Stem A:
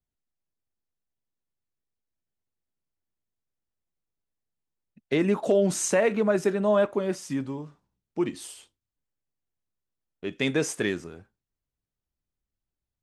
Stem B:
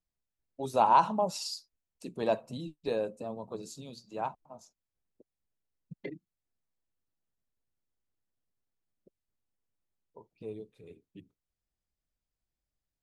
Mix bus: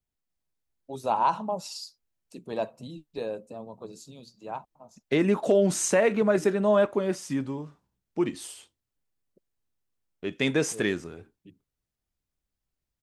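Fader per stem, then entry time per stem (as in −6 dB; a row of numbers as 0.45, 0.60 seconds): +0.5, −1.5 decibels; 0.00, 0.30 seconds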